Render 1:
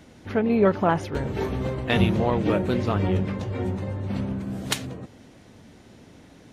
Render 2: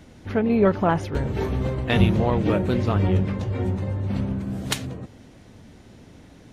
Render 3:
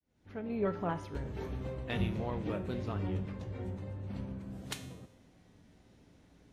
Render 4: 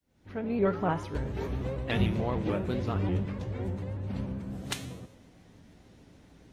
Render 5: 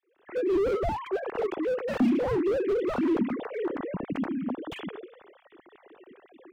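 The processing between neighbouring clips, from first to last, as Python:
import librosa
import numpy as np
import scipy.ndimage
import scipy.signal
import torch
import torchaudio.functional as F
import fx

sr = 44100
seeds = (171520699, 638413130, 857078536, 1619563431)

y1 = fx.low_shelf(x, sr, hz=100.0, db=8.5)
y2 = fx.fade_in_head(y1, sr, length_s=0.61)
y2 = fx.comb_fb(y2, sr, f0_hz=58.0, decay_s=0.88, harmonics='odd', damping=0.0, mix_pct=70)
y2 = y2 * 10.0 ** (-5.5 / 20.0)
y3 = fx.vibrato_shape(y2, sr, shape='saw_up', rate_hz=6.8, depth_cents=100.0)
y3 = y3 * 10.0 ** (6.0 / 20.0)
y4 = fx.sine_speech(y3, sr)
y4 = fx.slew_limit(y4, sr, full_power_hz=13.0)
y4 = y4 * 10.0 ** (7.0 / 20.0)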